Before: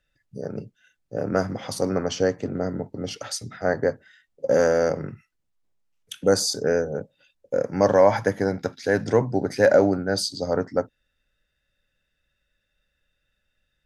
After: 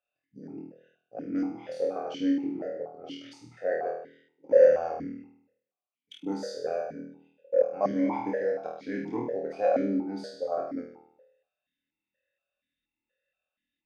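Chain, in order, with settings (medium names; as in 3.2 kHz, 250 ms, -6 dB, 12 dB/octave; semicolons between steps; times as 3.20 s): 4.57–5.12 s: octave divider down 1 oct, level -1 dB; on a send: flutter echo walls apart 4.3 m, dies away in 0.68 s; on the sum: stepped vowel filter 4.2 Hz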